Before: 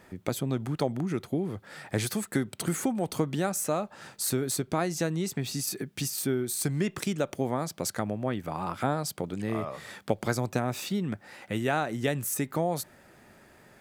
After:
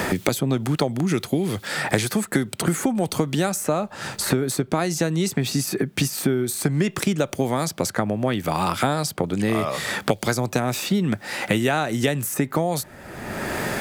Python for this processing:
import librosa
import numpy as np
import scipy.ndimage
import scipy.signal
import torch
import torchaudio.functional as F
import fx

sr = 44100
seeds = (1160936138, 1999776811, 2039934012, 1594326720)

y = fx.band_squash(x, sr, depth_pct=100)
y = F.gain(torch.from_numpy(y), 6.5).numpy()